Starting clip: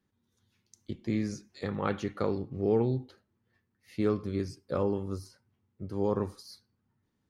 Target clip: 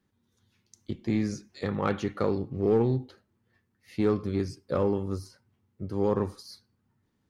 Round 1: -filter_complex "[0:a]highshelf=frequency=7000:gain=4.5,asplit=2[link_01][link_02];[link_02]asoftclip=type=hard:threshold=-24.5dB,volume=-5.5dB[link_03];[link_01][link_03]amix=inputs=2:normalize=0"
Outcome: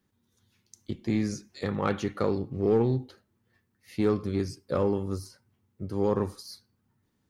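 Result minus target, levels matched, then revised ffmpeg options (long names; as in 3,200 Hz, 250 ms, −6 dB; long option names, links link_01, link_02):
8,000 Hz band +3.5 dB
-filter_complex "[0:a]highshelf=frequency=7000:gain=-3,asplit=2[link_01][link_02];[link_02]asoftclip=type=hard:threshold=-24.5dB,volume=-5.5dB[link_03];[link_01][link_03]amix=inputs=2:normalize=0"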